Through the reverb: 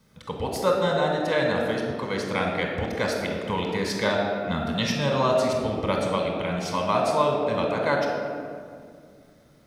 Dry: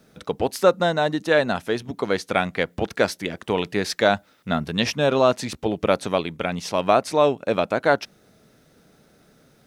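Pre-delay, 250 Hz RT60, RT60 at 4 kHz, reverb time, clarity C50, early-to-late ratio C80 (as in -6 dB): 22 ms, 2.9 s, 1.1 s, 2.1 s, 2.0 dB, 4.0 dB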